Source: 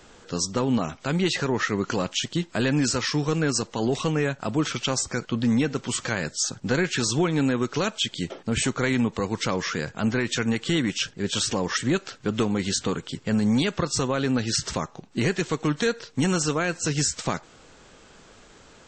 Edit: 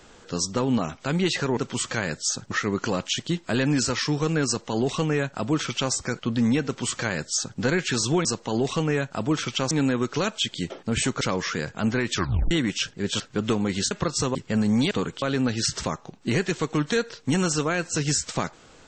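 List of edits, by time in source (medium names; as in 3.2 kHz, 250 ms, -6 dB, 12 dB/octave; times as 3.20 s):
3.53–4.99 s: copy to 7.31 s
5.71–6.65 s: copy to 1.57 s
8.81–9.41 s: delete
10.33 s: tape stop 0.38 s
11.40–12.10 s: delete
12.81–13.12 s: swap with 13.68–14.12 s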